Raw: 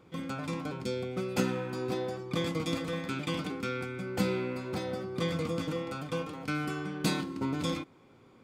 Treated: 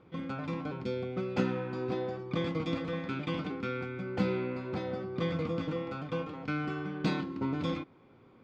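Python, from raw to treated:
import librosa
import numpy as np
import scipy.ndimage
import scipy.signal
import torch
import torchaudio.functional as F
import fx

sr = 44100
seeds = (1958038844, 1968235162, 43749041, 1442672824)

y = fx.air_absorb(x, sr, metres=210.0)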